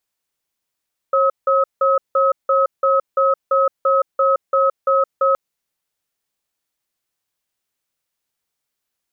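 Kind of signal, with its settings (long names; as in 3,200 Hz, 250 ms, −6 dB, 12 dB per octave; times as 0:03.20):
tone pair in a cadence 542 Hz, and 1,280 Hz, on 0.17 s, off 0.17 s, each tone −15 dBFS 4.22 s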